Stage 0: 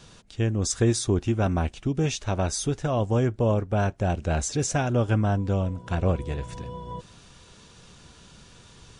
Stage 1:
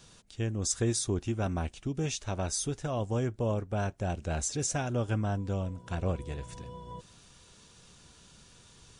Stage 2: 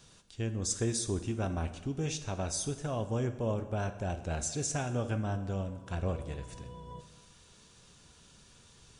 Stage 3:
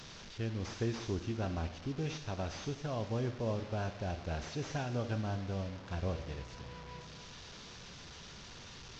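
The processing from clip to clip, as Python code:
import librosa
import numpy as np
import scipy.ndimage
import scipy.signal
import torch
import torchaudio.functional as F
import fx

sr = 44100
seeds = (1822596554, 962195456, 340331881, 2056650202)

y1 = fx.high_shelf(x, sr, hz=6300.0, db=9.5)
y1 = F.gain(torch.from_numpy(y1), -7.5).numpy()
y2 = fx.rev_plate(y1, sr, seeds[0], rt60_s=1.2, hf_ratio=0.75, predelay_ms=0, drr_db=9.0)
y2 = F.gain(torch.from_numpy(y2), -2.5).numpy()
y3 = fx.delta_mod(y2, sr, bps=32000, step_db=-40.5)
y3 = F.gain(torch.from_numpy(y3), -3.0).numpy()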